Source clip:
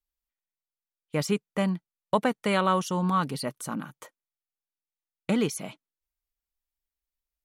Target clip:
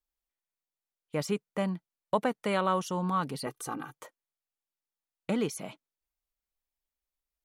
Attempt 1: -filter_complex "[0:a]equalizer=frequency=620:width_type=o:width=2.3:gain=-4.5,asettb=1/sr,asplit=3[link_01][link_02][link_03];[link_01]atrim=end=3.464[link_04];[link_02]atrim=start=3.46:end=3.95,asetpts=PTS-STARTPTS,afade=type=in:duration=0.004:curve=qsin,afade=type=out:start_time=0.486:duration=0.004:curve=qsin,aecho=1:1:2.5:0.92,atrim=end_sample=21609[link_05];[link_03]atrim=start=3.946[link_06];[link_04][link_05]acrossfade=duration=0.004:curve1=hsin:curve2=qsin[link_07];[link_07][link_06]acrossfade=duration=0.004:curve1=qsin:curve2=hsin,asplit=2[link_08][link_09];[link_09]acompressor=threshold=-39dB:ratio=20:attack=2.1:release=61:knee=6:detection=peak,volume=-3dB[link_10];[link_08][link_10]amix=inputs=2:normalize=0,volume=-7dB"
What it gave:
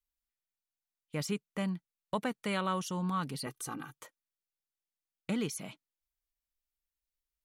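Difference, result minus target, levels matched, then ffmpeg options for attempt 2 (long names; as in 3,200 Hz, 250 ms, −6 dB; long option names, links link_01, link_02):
500 Hz band −3.5 dB
-filter_complex "[0:a]equalizer=frequency=620:width_type=o:width=2.3:gain=4,asettb=1/sr,asplit=3[link_01][link_02][link_03];[link_01]atrim=end=3.464[link_04];[link_02]atrim=start=3.46:end=3.95,asetpts=PTS-STARTPTS,afade=type=in:duration=0.004:curve=qsin,afade=type=out:start_time=0.486:duration=0.004:curve=qsin,aecho=1:1:2.5:0.92,atrim=end_sample=21609[link_05];[link_03]atrim=start=3.946[link_06];[link_04][link_05]acrossfade=duration=0.004:curve1=hsin:curve2=qsin[link_07];[link_07][link_06]acrossfade=duration=0.004:curve1=qsin:curve2=hsin,asplit=2[link_08][link_09];[link_09]acompressor=threshold=-39dB:ratio=20:attack=2.1:release=61:knee=6:detection=peak,volume=-3dB[link_10];[link_08][link_10]amix=inputs=2:normalize=0,volume=-7dB"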